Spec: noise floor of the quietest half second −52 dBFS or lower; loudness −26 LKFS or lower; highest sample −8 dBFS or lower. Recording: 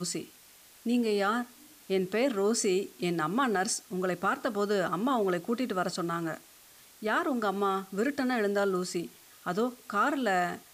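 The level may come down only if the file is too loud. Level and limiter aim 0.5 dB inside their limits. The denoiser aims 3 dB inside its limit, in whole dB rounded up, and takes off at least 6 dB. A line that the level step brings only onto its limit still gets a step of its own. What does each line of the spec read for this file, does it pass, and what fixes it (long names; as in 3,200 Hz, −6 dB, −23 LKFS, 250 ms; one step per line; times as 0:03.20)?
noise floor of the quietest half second −56 dBFS: in spec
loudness −30.0 LKFS: in spec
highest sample −16.5 dBFS: in spec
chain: no processing needed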